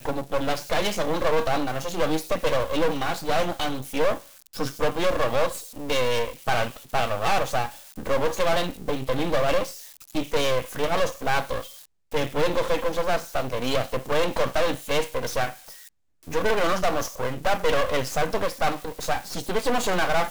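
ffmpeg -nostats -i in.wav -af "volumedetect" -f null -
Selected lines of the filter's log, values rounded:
mean_volume: -23.9 dB
max_volume: -12.5 dB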